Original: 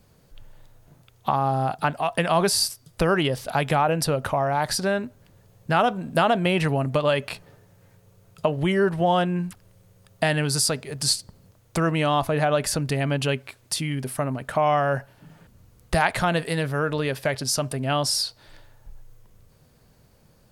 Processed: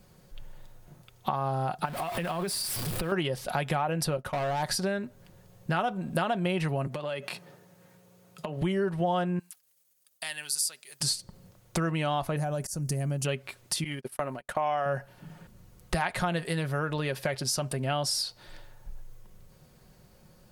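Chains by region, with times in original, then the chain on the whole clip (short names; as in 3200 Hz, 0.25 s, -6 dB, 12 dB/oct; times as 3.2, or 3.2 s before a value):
1.85–3.12 zero-crossing step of -26 dBFS + bell 6300 Hz -7.5 dB 0.57 oct + compressor 5:1, threshold -28 dBFS
4.17–4.63 expander -26 dBFS + hard clip -24 dBFS
6.87–8.62 HPF 140 Hz 24 dB/oct + compressor 4:1, threshold -31 dBFS
9.39–11.01 expander -51 dBFS + differentiator
12.36–13.25 EQ curve 140 Hz 0 dB, 3700 Hz -16 dB, 5800 Hz +6 dB + auto swell 0.245 s
13.84–14.86 bell 140 Hz -9.5 dB 1.6 oct + gate -34 dBFS, range -37 dB
whole clip: comb 5.5 ms, depth 38%; compressor 2.5:1, threshold -29 dBFS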